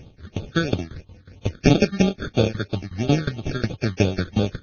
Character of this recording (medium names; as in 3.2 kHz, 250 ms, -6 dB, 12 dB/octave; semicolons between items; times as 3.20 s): aliases and images of a low sample rate 1 kHz, jitter 0%; tremolo saw down 5.5 Hz, depth 100%; phasing stages 8, 3 Hz, lowest notch 740–1800 Hz; Vorbis